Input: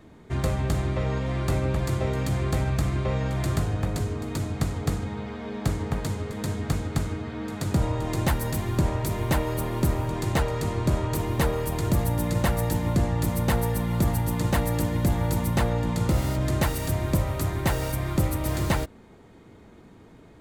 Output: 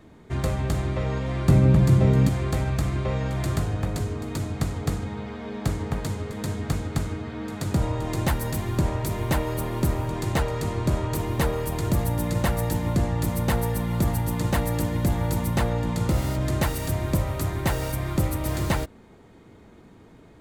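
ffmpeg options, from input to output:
ffmpeg -i in.wav -filter_complex "[0:a]asettb=1/sr,asplit=3[link_01][link_02][link_03];[link_01]atrim=end=1.484[link_04];[link_02]atrim=start=1.48:end=2.29,asetpts=PTS-STARTPTS,afade=type=in:duration=0.004:curve=qsin,afade=type=out:start_time=0.806:duration=0.004:curve=qsin,equalizer=frequency=170:width_type=o:width=1.6:gain=13.5[link_05];[link_03]atrim=start=2.286[link_06];[link_04][link_05]acrossfade=duration=0.004:curve1=hsin:curve2=qsin[link_07];[link_07][link_06]acrossfade=duration=0.004:curve1=qsin:curve2=hsin" out.wav

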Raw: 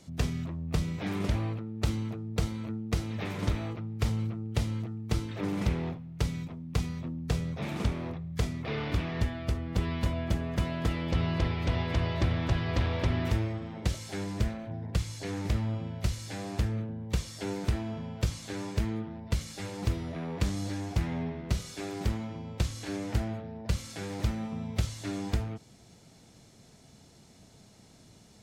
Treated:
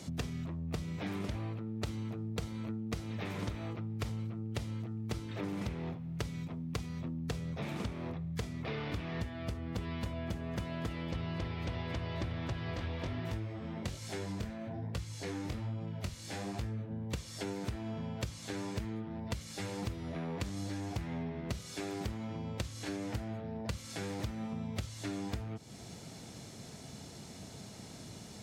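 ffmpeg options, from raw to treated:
ffmpeg -i in.wav -filter_complex "[0:a]asplit=3[link_01][link_02][link_03];[link_01]afade=type=out:start_time=12.74:duration=0.02[link_04];[link_02]flanger=delay=18:depth=5.9:speed=1.2,afade=type=in:start_time=12.74:duration=0.02,afade=type=out:start_time=16.9:duration=0.02[link_05];[link_03]afade=type=in:start_time=16.9:duration=0.02[link_06];[link_04][link_05][link_06]amix=inputs=3:normalize=0,highpass=63,acompressor=threshold=-46dB:ratio=4,volume=8dB" out.wav

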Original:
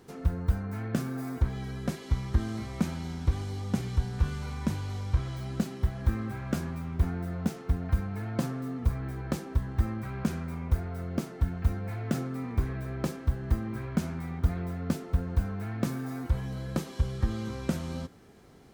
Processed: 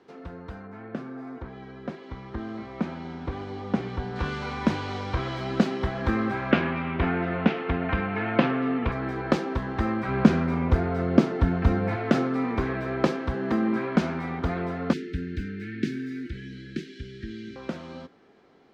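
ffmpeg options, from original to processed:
ffmpeg -i in.wav -filter_complex "[0:a]asettb=1/sr,asplit=3[link_01][link_02][link_03];[link_01]atrim=end=0.674[link_04];[link_02]atrim=start=0.67:end=4.16,asetpts=PTS-STARTPTS,afade=type=in:duration=0.004:curve=qsin,afade=type=out:start_time=3.486:duration=0.004:curve=qsin,highshelf=frequency=2800:gain=-10.5[link_05];[link_03]atrim=start=4.156[link_06];[link_04][link_05]acrossfade=duration=0.004:curve1=hsin:curve2=qsin[link_07];[link_07][link_06]acrossfade=duration=0.004:curve1=qsin:curve2=hsin,asettb=1/sr,asplit=3[link_08][link_09][link_10];[link_08]atrim=end=6.514[link_11];[link_09]atrim=start=6.51:end=8.92,asetpts=PTS-STARTPTS,afade=type=in:duration=0.004:curve=qsin,afade=type=out:start_time=2.406:duration=0.004:curve=qsin,lowpass=frequency=2700:width_type=q:width=2.4[link_12];[link_10]atrim=start=8.916[link_13];[link_11][link_12]acrossfade=duration=0.004:curve1=hsin:curve2=qsin[link_14];[link_14][link_13]acrossfade=duration=0.004:curve1=qsin:curve2=hsin,asettb=1/sr,asplit=3[link_15][link_16][link_17];[link_15]atrim=end=10.084[link_18];[link_16]atrim=start=10.08:end=11.96,asetpts=PTS-STARTPTS,afade=type=in:duration=0.004:curve=qsin,afade=type=out:start_time=1.876:duration=0.004:curve=qsin,lowshelf=frequency=330:gain=8[link_19];[link_17]atrim=start=11.956[link_20];[link_18][link_19]acrossfade=duration=0.004:curve1=hsin:curve2=qsin[link_21];[link_21][link_20]acrossfade=duration=0.004:curve1=qsin:curve2=hsin,asettb=1/sr,asplit=3[link_22][link_23][link_24];[link_22]atrim=end=13.344[link_25];[link_23]atrim=start=13.34:end=13.96,asetpts=PTS-STARTPTS,afade=type=in:duration=0.004:curve=qsin,afade=type=out:start_time=0.616:duration=0.004:curve=qsin,highpass=frequency=200:width_type=q:width=1.6[link_26];[link_24]atrim=start=13.956[link_27];[link_25][link_26]acrossfade=duration=0.004:curve1=hsin:curve2=qsin[link_28];[link_28][link_27]acrossfade=duration=0.004:curve1=qsin:curve2=hsin,asettb=1/sr,asplit=3[link_29][link_30][link_31];[link_29]atrim=end=14.934[link_32];[link_30]atrim=start=14.93:end=17.56,asetpts=PTS-STARTPTS,afade=type=in:duration=0.004:curve=qsin,afade=type=out:start_time=2.626:duration=0.004:curve=qsin,asuperstop=centerf=810:order=12:qfactor=0.69[link_33];[link_31]atrim=start=17.556[link_34];[link_32][link_33]acrossfade=duration=0.004:curve1=hsin:curve2=qsin[link_35];[link_35][link_34]acrossfade=duration=0.004:curve1=qsin:curve2=hsin,acrossover=split=220 5100:gain=0.141 1 0.0631[link_36][link_37][link_38];[link_36][link_37][link_38]amix=inputs=3:normalize=0,dynaudnorm=framelen=450:gausssize=17:maxgain=15dB,highshelf=frequency=7400:gain=-6.5" out.wav

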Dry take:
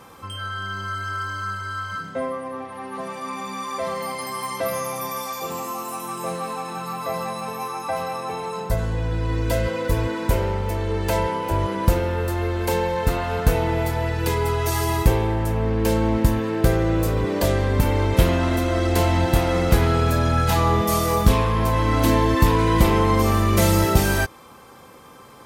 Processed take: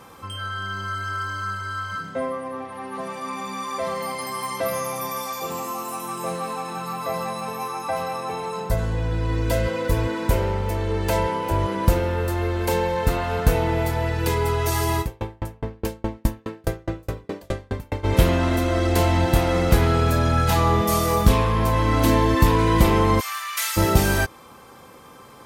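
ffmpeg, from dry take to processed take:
ffmpeg -i in.wav -filter_complex "[0:a]asplit=3[link_01][link_02][link_03];[link_01]afade=type=out:start_time=15:duration=0.02[link_04];[link_02]aeval=exprs='val(0)*pow(10,-39*if(lt(mod(4.8*n/s,1),2*abs(4.8)/1000),1-mod(4.8*n/s,1)/(2*abs(4.8)/1000),(mod(4.8*n/s,1)-2*abs(4.8)/1000)/(1-2*abs(4.8)/1000))/20)':channel_layout=same,afade=type=in:start_time=15:duration=0.02,afade=type=out:start_time=18.03:duration=0.02[link_05];[link_03]afade=type=in:start_time=18.03:duration=0.02[link_06];[link_04][link_05][link_06]amix=inputs=3:normalize=0,asplit=3[link_07][link_08][link_09];[link_07]afade=type=out:start_time=23.19:duration=0.02[link_10];[link_08]highpass=frequency=1300:width=0.5412,highpass=frequency=1300:width=1.3066,afade=type=in:start_time=23.19:duration=0.02,afade=type=out:start_time=23.76:duration=0.02[link_11];[link_09]afade=type=in:start_time=23.76:duration=0.02[link_12];[link_10][link_11][link_12]amix=inputs=3:normalize=0" out.wav

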